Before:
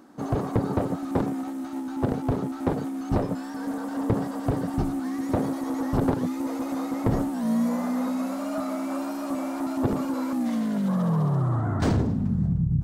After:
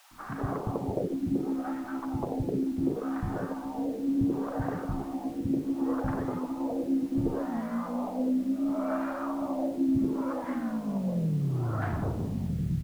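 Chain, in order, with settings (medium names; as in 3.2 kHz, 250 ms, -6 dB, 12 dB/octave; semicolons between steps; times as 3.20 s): compression, threshold -27 dBFS, peak gain reduction 9 dB; LFO low-pass sine 0.69 Hz 280–1700 Hz; added noise pink -55 dBFS; three bands offset in time highs, lows, mids 110/200 ms, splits 250/970 Hz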